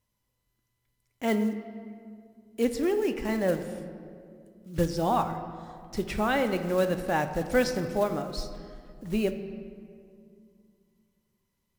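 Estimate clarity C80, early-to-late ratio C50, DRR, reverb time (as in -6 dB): 10.5 dB, 9.5 dB, 7.0 dB, 2.3 s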